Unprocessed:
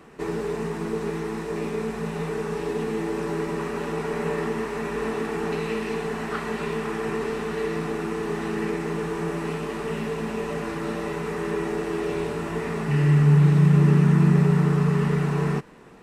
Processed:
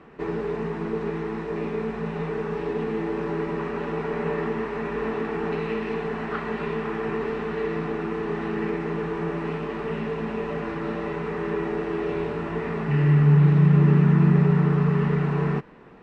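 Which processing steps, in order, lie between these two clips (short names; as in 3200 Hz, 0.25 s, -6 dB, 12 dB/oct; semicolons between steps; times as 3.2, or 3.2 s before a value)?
LPF 2900 Hz 12 dB/oct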